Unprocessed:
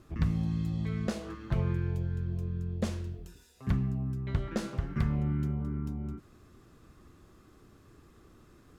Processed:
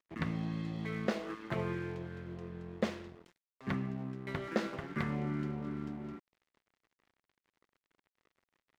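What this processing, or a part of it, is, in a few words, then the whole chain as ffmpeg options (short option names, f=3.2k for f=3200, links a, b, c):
pocket radio on a weak battery: -af "highpass=260,lowpass=3.8k,aeval=exprs='sgn(val(0))*max(abs(val(0))-0.00178,0)':c=same,equalizer=f=2k:t=o:w=0.32:g=4.5,volume=3.5dB"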